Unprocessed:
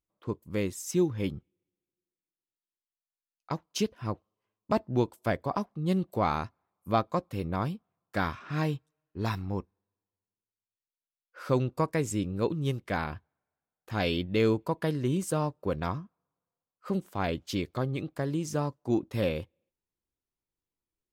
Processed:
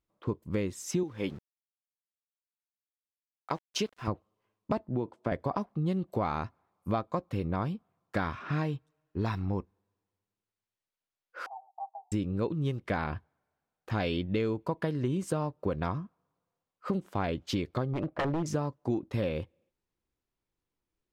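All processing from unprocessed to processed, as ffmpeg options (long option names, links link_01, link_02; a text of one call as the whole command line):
ffmpeg -i in.wav -filter_complex "[0:a]asettb=1/sr,asplit=3[link_01][link_02][link_03];[link_01]atrim=end=1.034[link_04];[link_02]atrim=start=1.03:end=4.08,asetpts=PTS-STARTPTS,afade=type=in:duration=0.004:curve=qsin,afade=type=out:start_time=3.046:duration=0.004:curve=qsin,highpass=frequency=390:poles=1,aeval=exprs='val(0)*gte(abs(val(0)),0.00224)':channel_layout=same[link_05];[link_03]atrim=start=4.076[link_06];[link_04][link_05]acrossfade=duration=0.004:curve1=hsin:curve2=qsin[link_07];[link_07][link_06]acrossfade=duration=0.004:curve1=qsin:curve2=hsin,asettb=1/sr,asplit=3[link_08][link_09][link_10];[link_08]atrim=end=4.894[link_11];[link_09]atrim=start=4.89:end=5.32,asetpts=PTS-STARTPTS,afade=type=in:duration=0.004:curve=qsin,afade=type=out:start_time=0.426:duration=0.004:curve=qsin,highshelf=frequency=2200:gain=-11.5,acompressor=threshold=-26dB:ratio=3:attack=3.2:release=140:knee=1:detection=peak,highpass=120,lowpass=6300[link_12];[link_10]atrim=start=5.316[link_13];[link_11][link_12]acrossfade=duration=0.004:curve1=hsin:curve2=qsin[link_14];[link_14][link_13]acrossfade=duration=0.004:curve1=qsin:curve2=hsin,asettb=1/sr,asplit=3[link_15][link_16][link_17];[link_15]atrim=end=11.464[link_18];[link_16]atrim=start=11.46:end=12.12,asetpts=PTS-STARTPTS,afade=type=in:duration=0.004:curve=qsin,afade=type=out:start_time=0.656:duration=0.004:curve=qsin,aecho=1:1:2.6:0.96,atrim=end_sample=29106,acompressor=threshold=-31dB:ratio=2.5:attack=3.2:release=140:knee=1:detection=peak,asuperpass=centerf=800:order=8:qfactor=3.7[link_19];[link_17]atrim=start=12.116[link_20];[link_18][link_19]acrossfade=duration=0.004:curve1=hsin:curve2=qsin[link_21];[link_21][link_20]acrossfade=duration=0.004:curve1=qsin:curve2=hsin,asettb=1/sr,asplit=3[link_22][link_23][link_24];[link_22]atrim=end=17.934[link_25];[link_23]atrim=start=17.93:end=18.46,asetpts=PTS-STARTPTS,afade=type=in:duration=0.004:curve=qsin,afade=type=out:start_time=0.526:duration=0.004:curve=qsin,lowpass=1900,equalizer=frequency=600:width=5:gain=12.5,aeval=exprs='0.0447*(abs(mod(val(0)/0.0447+3,4)-2)-1)':channel_layout=same[link_26];[link_24]atrim=start=18.456[link_27];[link_25][link_26]acrossfade=duration=0.004:curve1=hsin:curve2=qsin[link_28];[link_28][link_27]acrossfade=duration=0.004:curve1=qsin:curve2=hsin,aemphasis=mode=reproduction:type=50kf,acompressor=threshold=-33dB:ratio=6,volume=6dB" out.wav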